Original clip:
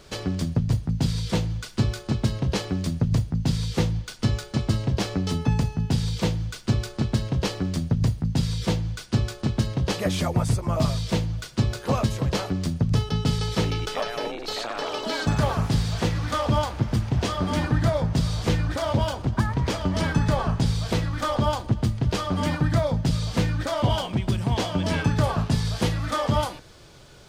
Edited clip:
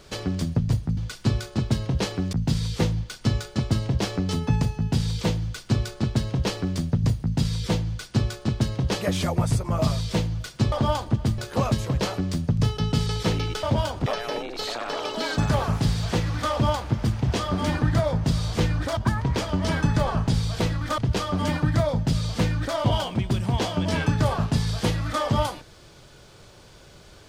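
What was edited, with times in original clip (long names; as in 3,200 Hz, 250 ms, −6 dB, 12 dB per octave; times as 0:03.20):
0:00.97–0:01.50: remove
0:02.86–0:03.31: remove
0:18.86–0:19.29: move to 0:13.95
0:21.30–0:21.96: move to 0:11.70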